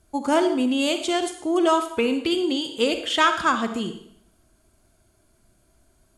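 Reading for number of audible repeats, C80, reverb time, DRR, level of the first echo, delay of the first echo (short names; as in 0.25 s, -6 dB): none, 11.5 dB, 0.65 s, 7.5 dB, none, none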